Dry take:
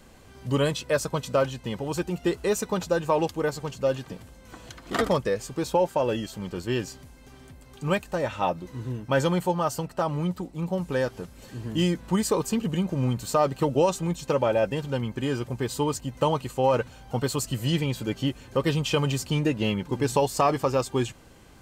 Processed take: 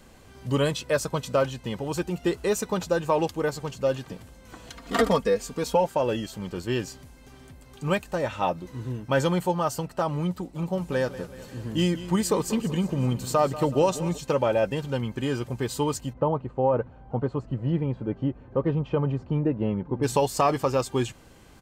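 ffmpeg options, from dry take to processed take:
-filter_complex "[0:a]asettb=1/sr,asplit=3[a][b][c];[a]atrim=end=4.694[d];[b]atrim=start=4.69:end=5.86,asetpts=PTS-STARTPTS,afade=t=in:d=0.004:c=qsin,afade=t=out:st=1.166:d=0.004:c=qsin,aecho=1:1:4.3:0.65,atrim=end_sample=51597[e];[c]atrim=start=5.856[f];[d][e]acrossfade=d=0.004:c1=hsin:c2=qsin[g];[g][f]acrossfade=d=0.004:c1=qsin:c2=hsin,asplit=3[h][i][j];[h]afade=t=out:st=10.54:d=0.02[k];[i]aecho=1:1:189|378|567|756|945:0.188|0.104|0.057|0.0313|0.0172,afade=t=in:st=10.54:d=0.02,afade=t=out:st=14.17:d=0.02[l];[j]afade=t=in:st=14.17:d=0.02[m];[k][l][m]amix=inputs=3:normalize=0,asplit=3[n][o][p];[n]afade=t=out:st=16.12:d=0.02[q];[o]lowpass=1k,afade=t=in:st=16.12:d=0.02,afade=t=out:st=20.02:d=0.02[r];[p]afade=t=in:st=20.02:d=0.02[s];[q][r][s]amix=inputs=3:normalize=0"

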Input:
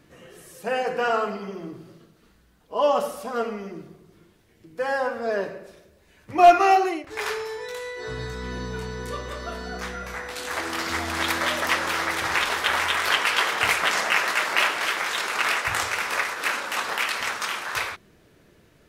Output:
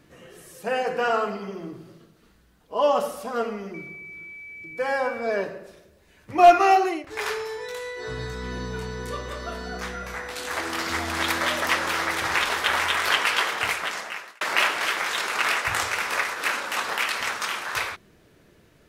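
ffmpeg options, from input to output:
-filter_complex "[0:a]asettb=1/sr,asplit=3[a][b][c];[a]atrim=end=3.744[d];[b]atrim=start=3.74:end=5.43,asetpts=PTS-STARTPTS,afade=t=in:d=0.004:c=qsin,afade=t=out:st=1.686:d=0.004:c=qsin,aeval=exprs='val(0)+0.0126*sin(2*PI*2300*n/s)':c=same[e];[c]atrim=start=5.426[f];[d][e]acrossfade=d=0.004:c1=hsin:c2=qsin[g];[g][f]acrossfade=d=0.004:c1=qsin:c2=hsin,asplit=2[h][i];[h]atrim=end=14.41,asetpts=PTS-STARTPTS,afade=t=out:st=13.26:d=1.15[j];[i]atrim=start=14.41,asetpts=PTS-STARTPTS,afade=t=in:d=0.004:c=hsin[k];[j][k]concat=n=2:v=0:a=1"

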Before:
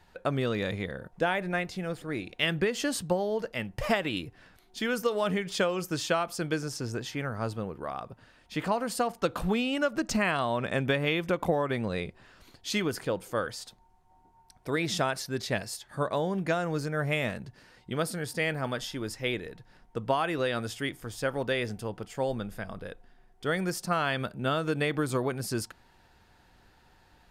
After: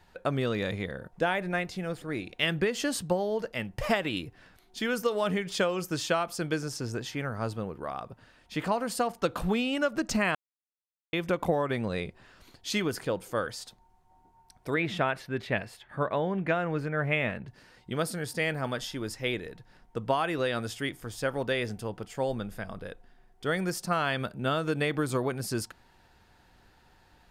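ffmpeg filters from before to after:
-filter_complex "[0:a]asettb=1/sr,asplit=3[a][b][c];[a]atrim=end=14.744[d];[b]atrim=start=14.74:end=17.48,asetpts=PTS-STARTPTS,afade=t=in:d=0.004:c=qsin,afade=t=out:st=2.736:d=0.004:c=qsin,highshelf=f=3.8k:t=q:w=1.5:g=-13[e];[c]atrim=start=17.476[f];[d][e]acrossfade=d=0.004:c1=hsin:c2=qsin[g];[g][f]acrossfade=d=0.004:c1=qsin:c2=hsin,asplit=3[h][i][j];[h]atrim=end=10.35,asetpts=PTS-STARTPTS,afade=t=out:st=10.346:d=0.004:c=hsin[k];[i]atrim=start=10.35:end=11.13,asetpts=PTS-STARTPTS,volume=0[l];[j]atrim=start=11.13,asetpts=PTS-STARTPTS,afade=t=in:d=0.004:c=hsin[m];[k][l][m]concat=n=3:v=0:a=1"

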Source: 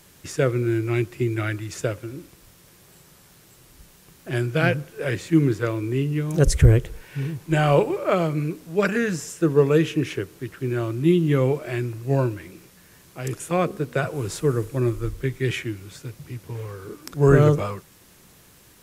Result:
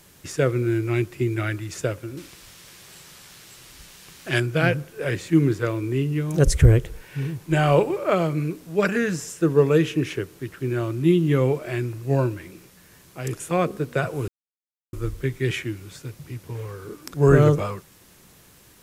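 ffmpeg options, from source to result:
-filter_complex "[0:a]asettb=1/sr,asplit=3[a][b][c];[a]atrim=end=2.174[d];[b]atrim=start=2.17:end=4.4,asetpts=PTS-STARTPTS,afade=t=in:d=0.004:c=qsin,afade=t=out:st=2.226:d=0.004:c=qsin,equalizer=f=3.5k:w=0.31:g=10.5[e];[c]atrim=start=4.396[f];[d][e]acrossfade=d=0.004:c1=hsin:c2=qsin[g];[g][f]acrossfade=d=0.004:c1=qsin:c2=hsin,asplit=3[h][i][j];[h]atrim=end=14.28,asetpts=PTS-STARTPTS,afade=t=out:st=14.276:d=0.004:c=hsin[k];[i]atrim=start=14.28:end=14.93,asetpts=PTS-STARTPTS,volume=0[l];[j]atrim=start=14.93,asetpts=PTS-STARTPTS,afade=t=in:d=0.004:c=hsin[m];[k][l][m]concat=n=3:v=0:a=1"

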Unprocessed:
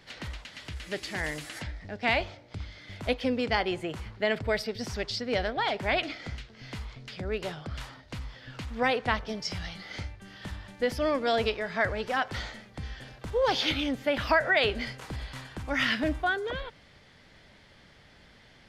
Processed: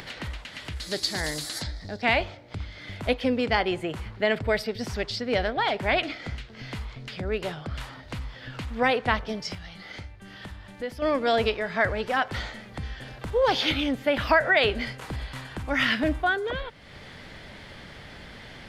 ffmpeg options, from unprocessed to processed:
-filter_complex "[0:a]asettb=1/sr,asplit=3[a][b][c];[a]atrim=end=0.804[d];[b]atrim=start=0.8:end=2.02,asetpts=PTS-STARTPTS,afade=t=in:d=0.004:c=qsin,afade=t=out:st=1.216:d=0.004:c=qsin,highshelf=f=3.4k:t=q:w=3:g=7.5[e];[c]atrim=start=2.016[f];[d][e]acrossfade=d=0.004:c1=hsin:c2=qsin[g];[g][f]acrossfade=d=0.004:c1=qsin:c2=hsin,asplit=3[h][i][j];[h]atrim=end=9.55,asetpts=PTS-STARTPTS,afade=t=out:st=9.24:d=0.31:c=log:silence=0.354813[k];[i]atrim=start=9.55:end=11.02,asetpts=PTS-STARTPTS,volume=-9dB[l];[j]atrim=start=11.02,asetpts=PTS-STARTPTS,afade=t=in:d=0.31:c=log:silence=0.354813[m];[k][l][m]concat=n=3:v=0:a=1,equalizer=f=5.8k:t=o:w=0.85:g=-4,acompressor=mode=upward:threshold=-37dB:ratio=2.5,volume=3.5dB"

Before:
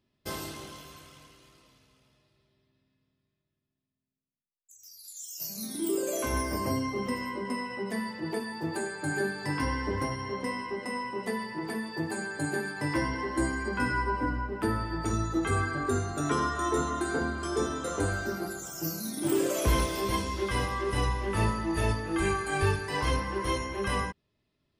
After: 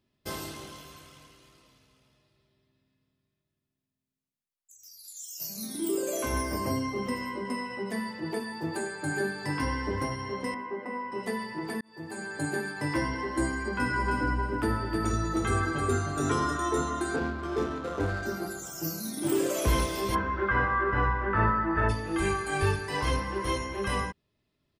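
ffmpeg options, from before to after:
-filter_complex "[0:a]asettb=1/sr,asplit=3[a][b][c];[a]atrim=end=10.544[d];[b]atrim=start=10.54:end=11.12,asetpts=PTS-STARTPTS,afade=t=in:d=0.004:c=qsin,afade=t=out:st=0.576:d=0.004:c=qsin,acrossover=split=180 2300:gain=0.224 1 0.0891[e][f][g];[e][f][g]amix=inputs=3:normalize=0[h];[c]atrim=start=11.116[i];[d][h]acrossfade=d=0.004:c1=hsin:c2=qsin[j];[j][i]acrossfade=d=0.004:c1=qsin:c2=hsin,asplit=3[k][l][m];[k]afade=t=out:st=13.92:d=0.02[n];[l]aecho=1:1:312|624|936:0.596|0.131|0.0288,afade=t=in:st=13.92:d=0.02,afade=t=out:st=16.56:d=0.02[o];[m]afade=t=in:st=16.56:d=0.02[p];[n][o][p]amix=inputs=3:normalize=0,asettb=1/sr,asplit=3[q][r][s];[q]atrim=end=17.164[t];[r]atrim=start=17.16:end=18.23,asetpts=PTS-STARTPTS,afade=t=in:d=0.004:c=qsin,afade=t=out:st=1.066:d=0.004:c=qsin,adynamicsmooth=sensitivity=5.5:basefreq=890[u];[s]atrim=start=18.226[v];[t][u]acrossfade=d=0.004:c1=hsin:c2=qsin[w];[w][v]acrossfade=d=0.004:c1=qsin:c2=hsin,asplit=3[x][y][z];[x]afade=t=out:st=20.14:d=0.02[aa];[y]lowpass=f=1.5k:t=q:w=5.2,afade=t=in:st=20.14:d=0.02,afade=t=out:st=21.88:d=0.02[ab];[z]afade=t=in:st=21.88:d=0.02[ac];[aa][ab][ac]amix=inputs=3:normalize=0,asplit=2[ad][ae];[ad]atrim=end=11.81,asetpts=PTS-STARTPTS,afade=t=out:st=11.806:d=0.004:c=hsin[af];[ae]atrim=start=11.81,asetpts=PTS-STARTPTS,afade=t=in:d=0.57[ag];[af][ag]concat=n=2:v=0:a=1"

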